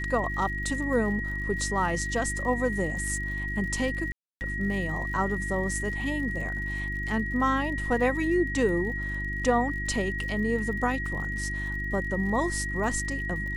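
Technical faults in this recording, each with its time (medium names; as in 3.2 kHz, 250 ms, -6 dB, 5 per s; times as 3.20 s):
crackle 67 per s -38 dBFS
hum 50 Hz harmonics 7 -34 dBFS
whine 1.9 kHz -32 dBFS
4.12–4.41 s: dropout 289 ms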